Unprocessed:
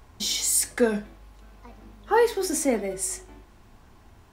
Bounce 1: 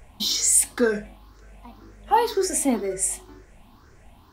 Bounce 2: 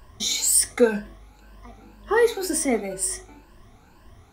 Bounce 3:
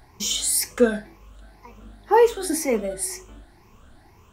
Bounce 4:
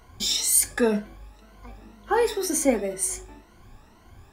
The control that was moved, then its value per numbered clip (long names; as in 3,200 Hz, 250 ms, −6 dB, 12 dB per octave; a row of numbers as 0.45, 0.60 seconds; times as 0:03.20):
rippled gain that drifts along the octave scale, ripples per octave: 0.52, 1.3, 0.79, 1.9